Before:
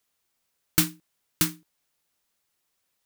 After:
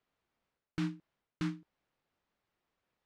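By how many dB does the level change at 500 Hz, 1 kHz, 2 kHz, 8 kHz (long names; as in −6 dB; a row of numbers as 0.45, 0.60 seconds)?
−8.0, −10.5, −13.5, −32.0 decibels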